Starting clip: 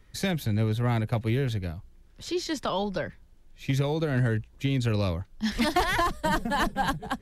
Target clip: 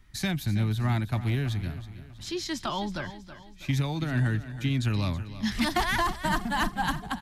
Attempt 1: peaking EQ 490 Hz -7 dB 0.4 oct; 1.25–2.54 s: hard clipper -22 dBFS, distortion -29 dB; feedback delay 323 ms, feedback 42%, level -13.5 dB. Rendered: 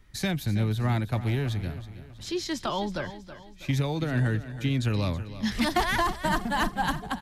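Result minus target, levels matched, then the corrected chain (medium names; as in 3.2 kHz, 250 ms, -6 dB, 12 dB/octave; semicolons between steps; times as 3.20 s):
500 Hz band +3.5 dB
peaking EQ 490 Hz -18.5 dB 0.4 oct; 1.25–2.54 s: hard clipper -22 dBFS, distortion -32 dB; feedback delay 323 ms, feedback 42%, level -13.5 dB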